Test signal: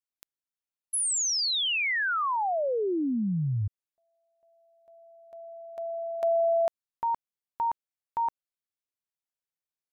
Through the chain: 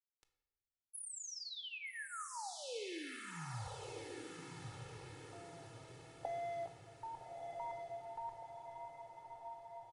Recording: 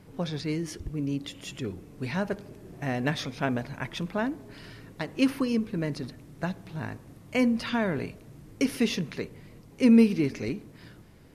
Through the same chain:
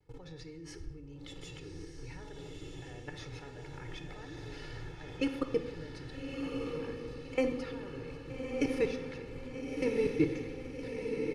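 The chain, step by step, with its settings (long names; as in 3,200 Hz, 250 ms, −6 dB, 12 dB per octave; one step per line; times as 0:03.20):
low-pass filter 6,900 Hz 12 dB per octave
dynamic equaliser 4,200 Hz, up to −6 dB, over −48 dBFS, Q 1.1
output level in coarse steps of 24 dB
low-shelf EQ 68 Hz +8 dB
pitch vibrato 0.97 Hz 50 cents
comb filter 2.3 ms, depth 86%
feedback delay with all-pass diffusion 1,251 ms, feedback 52%, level −3 dB
rectangular room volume 450 cubic metres, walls mixed, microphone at 0.56 metres
level −2.5 dB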